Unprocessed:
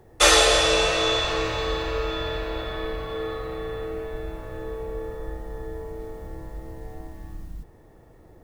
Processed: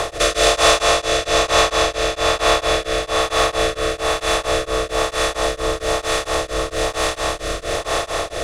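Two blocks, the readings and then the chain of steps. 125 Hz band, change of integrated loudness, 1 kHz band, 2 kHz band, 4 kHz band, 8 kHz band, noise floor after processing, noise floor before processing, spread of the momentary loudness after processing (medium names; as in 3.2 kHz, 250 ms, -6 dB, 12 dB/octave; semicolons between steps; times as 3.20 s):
+4.5 dB, +4.5 dB, +9.5 dB, +6.5 dB, +5.0 dB, +5.5 dB, -36 dBFS, -52 dBFS, 7 LU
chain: spectral levelling over time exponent 0.2; small resonant body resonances 680/1100 Hz, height 9 dB, ringing for 30 ms; rotary cabinet horn 1.1 Hz; in parallel at -6 dB: saturation -15 dBFS, distortion -11 dB; on the sum: tremolo of two beating tones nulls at 4.4 Hz; trim -1 dB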